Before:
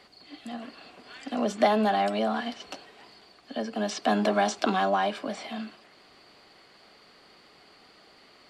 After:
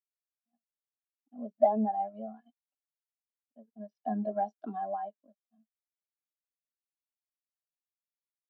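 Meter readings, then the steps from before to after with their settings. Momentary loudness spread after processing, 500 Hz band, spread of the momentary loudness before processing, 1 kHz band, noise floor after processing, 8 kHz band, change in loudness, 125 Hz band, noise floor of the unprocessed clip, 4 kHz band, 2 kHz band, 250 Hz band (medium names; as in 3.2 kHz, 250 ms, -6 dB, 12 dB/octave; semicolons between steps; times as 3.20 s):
18 LU, -6.0 dB, 19 LU, -7.0 dB, under -85 dBFS, under -35 dB, -4.5 dB, no reading, -57 dBFS, under -40 dB, -26.0 dB, -8.0 dB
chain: crossover distortion -37 dBFS; spectral contrast expander 2.5:1; trim -1 dB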